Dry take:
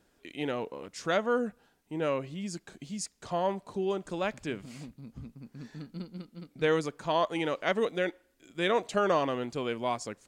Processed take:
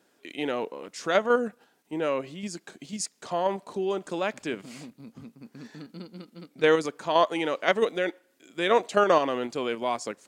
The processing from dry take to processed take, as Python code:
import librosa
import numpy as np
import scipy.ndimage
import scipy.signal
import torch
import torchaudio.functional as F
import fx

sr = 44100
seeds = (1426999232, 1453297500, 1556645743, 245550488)

p1 = scipy.signal.sosfilt(scipy.signal.butter(2, 230.0, 'highpass', fs=sr, output='sos'), x)
p2 = fx.level_steps(p1, sr, step_db=13)
y = p1 + (p2 * librosa.db_to_amplitude(2.0))